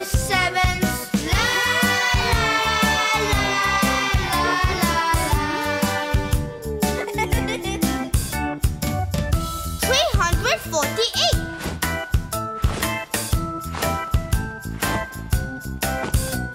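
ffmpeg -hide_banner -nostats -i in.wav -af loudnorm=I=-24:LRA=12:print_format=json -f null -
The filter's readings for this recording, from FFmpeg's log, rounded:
"input_i" : "-21.6",
"input_tp" : "-6.5",
"input_lra" : "5.9",
"input_thresh" : "-31.6",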